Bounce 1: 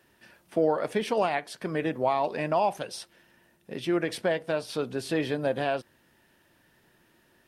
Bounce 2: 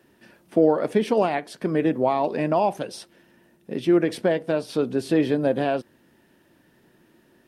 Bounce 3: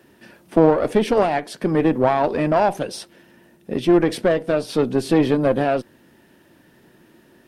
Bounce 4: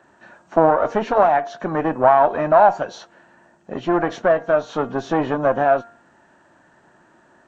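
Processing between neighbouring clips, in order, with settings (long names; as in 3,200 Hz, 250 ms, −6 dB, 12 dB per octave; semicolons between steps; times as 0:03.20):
parametric band 270 Hz +9.5 dB 2.1 octaves
one-sided soft clipper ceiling −19.5 dBFS; level +6 dB
hearing-aid frequency compression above 2,500 Hz 1.5 to 1; flat-topped bell 1,000 Hz +12 dB; hum removal 232.5 Hz, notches 11; level −5.5 dB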